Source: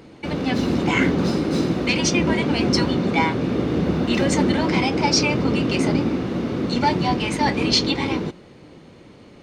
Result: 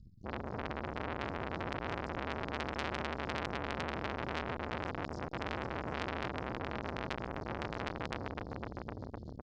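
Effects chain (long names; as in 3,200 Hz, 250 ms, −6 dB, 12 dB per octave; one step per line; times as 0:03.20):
running median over 9 samples
inverse Chebyshev band-stop filter 380–2,400 Hz, stop band 70 dB
hum removal 96.49 Hz, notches 2
reversed playback
downward compressor 16 to 1, threshold −33 dBFS, peak gain reduction 6 dB
reversed playback
Chebyshev low-pass with heavy ripple 5,200 Hz, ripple 3 dB
pitch-shifted copies added −3 semitones −15 dB, +5 semitones −9 dB
echo machine with several playback heads 254 ms, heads all three, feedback 59%, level −10.5 dB
saturating transformer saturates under 2,700 Hz
level +11.5 dB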